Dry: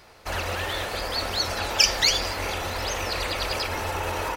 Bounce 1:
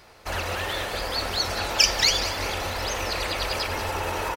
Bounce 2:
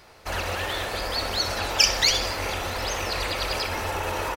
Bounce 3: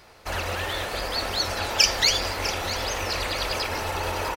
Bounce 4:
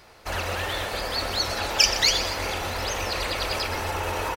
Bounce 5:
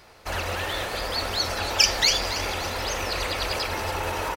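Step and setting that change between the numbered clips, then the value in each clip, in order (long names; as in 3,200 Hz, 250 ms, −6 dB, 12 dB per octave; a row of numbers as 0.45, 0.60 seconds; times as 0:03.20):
repeating echo, delay time: 191, 64, 650, 124, 280 milliseconds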